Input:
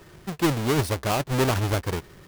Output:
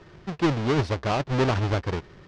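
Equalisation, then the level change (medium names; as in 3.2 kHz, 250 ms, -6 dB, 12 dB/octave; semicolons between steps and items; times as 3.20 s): low-pass 6 kHz 24 dB/octave; treble shelf 4 kHz -6 dB; 0.0 dB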